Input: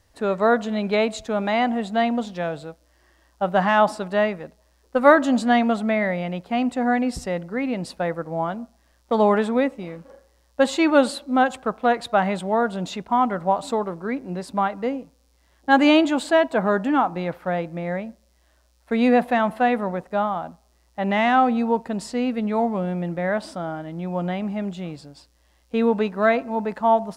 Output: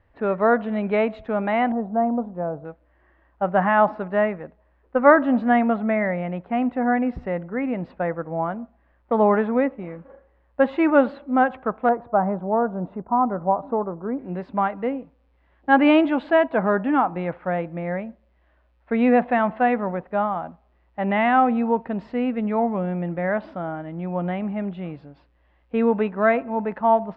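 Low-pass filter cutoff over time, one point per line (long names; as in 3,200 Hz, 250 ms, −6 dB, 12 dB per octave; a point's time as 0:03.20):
low-pass filter 24 dB per octave
2,400 Hz
from 0:01.72 1,100 Hz
from 0:02.65 2,200 Hz
from 0:11.89 1,200 Hz
from 0:14.19 2,600 Hz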